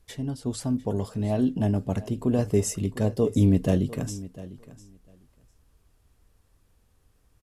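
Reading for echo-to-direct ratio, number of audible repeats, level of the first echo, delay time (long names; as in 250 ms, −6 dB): −17.5 dB, 2, −17.5 dB, 701 ms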